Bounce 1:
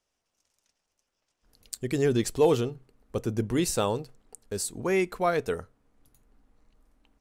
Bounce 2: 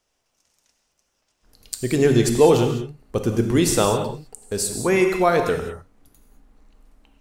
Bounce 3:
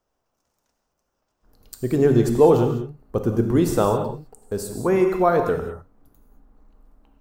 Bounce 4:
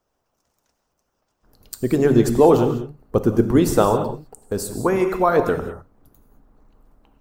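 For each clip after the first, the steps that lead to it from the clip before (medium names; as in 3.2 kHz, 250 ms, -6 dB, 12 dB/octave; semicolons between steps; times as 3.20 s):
gated-style reverb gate 230 ms flat, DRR 4.5 dB; trim +7 dB
high-order bell 4.6 kHz -11.5 dB 2.9 oct
harmonic-percussive split percussive +8 dB; trim -2 dB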